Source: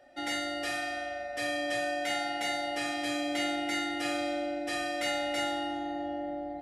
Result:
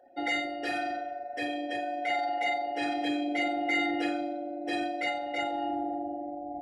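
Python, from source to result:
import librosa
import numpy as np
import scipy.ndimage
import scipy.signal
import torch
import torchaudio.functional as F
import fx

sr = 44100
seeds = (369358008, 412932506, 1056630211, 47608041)

y = fx.envelope_sharpen(x, sr, power=2.0)
y = fx.notch_comb(y, sr, f0_hz=600.0)
y = F.gain(torch.from_numpy(y), 5.0).numpy()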